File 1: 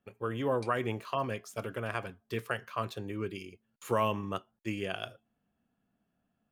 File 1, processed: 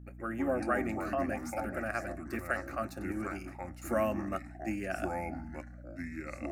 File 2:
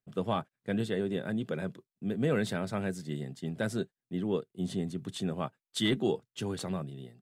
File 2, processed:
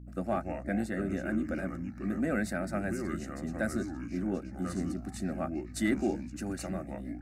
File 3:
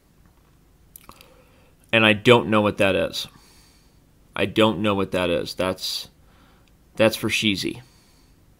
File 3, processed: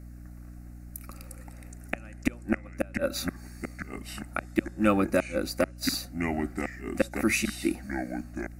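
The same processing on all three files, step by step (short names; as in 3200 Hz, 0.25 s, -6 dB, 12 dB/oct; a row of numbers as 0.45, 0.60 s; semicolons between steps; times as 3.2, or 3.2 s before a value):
flipped gate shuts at -9 dBFS, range -34 dB; echoes that change speed 0.104 s, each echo -4 st, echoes 3, each echo -6 dB; fixed phaser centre 660 Hz, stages 8; hum 60 Hz, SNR 13 dB; gain +2.5 dB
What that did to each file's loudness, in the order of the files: -0.5, -0.5, -10.0 LU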